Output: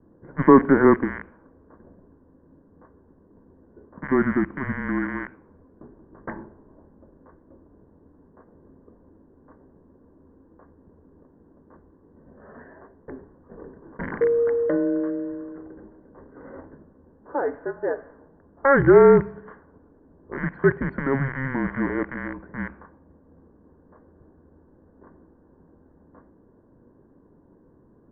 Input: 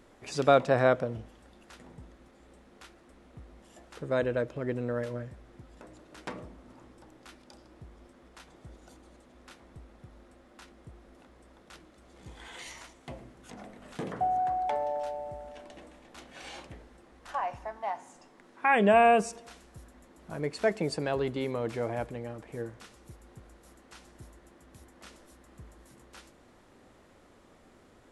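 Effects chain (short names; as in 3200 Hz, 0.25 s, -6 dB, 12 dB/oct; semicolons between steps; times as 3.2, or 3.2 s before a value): rattling part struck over -39 dBFS, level -22 dBFS; mistuned SSB -270 Hz 260–2100 Hz; low-pass opened by the level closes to 440 Hz, open at -30 dBFS; low shelf 140 Hz -11 dB; reverb RT60 0.45 s, pre-delay 3 ms, DRR 22 dB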